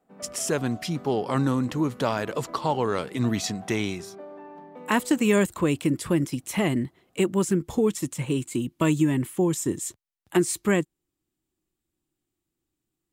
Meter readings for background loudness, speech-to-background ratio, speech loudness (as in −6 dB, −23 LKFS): −45.0 LKFS, 19.0 dB, −26.0 LKFS